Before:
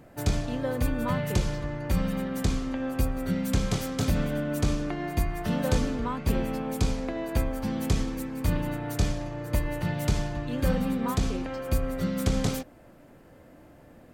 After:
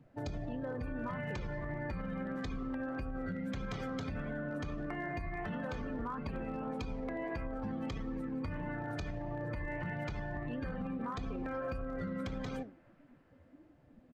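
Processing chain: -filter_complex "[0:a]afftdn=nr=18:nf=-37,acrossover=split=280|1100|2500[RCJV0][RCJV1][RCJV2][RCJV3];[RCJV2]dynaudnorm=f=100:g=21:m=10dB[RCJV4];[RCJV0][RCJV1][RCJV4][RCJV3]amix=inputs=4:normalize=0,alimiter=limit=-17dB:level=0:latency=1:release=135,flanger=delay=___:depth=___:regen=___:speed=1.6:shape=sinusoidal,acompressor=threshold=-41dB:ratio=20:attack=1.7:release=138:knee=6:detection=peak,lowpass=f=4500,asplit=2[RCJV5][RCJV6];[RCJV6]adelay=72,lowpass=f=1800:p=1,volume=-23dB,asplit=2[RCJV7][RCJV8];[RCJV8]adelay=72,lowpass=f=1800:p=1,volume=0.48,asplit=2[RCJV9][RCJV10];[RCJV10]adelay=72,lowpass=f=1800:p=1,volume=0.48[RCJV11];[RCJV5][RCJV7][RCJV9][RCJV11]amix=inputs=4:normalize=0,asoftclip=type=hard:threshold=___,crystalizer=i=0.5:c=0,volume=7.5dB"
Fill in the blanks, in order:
3.9, 8, 77, -38.5dB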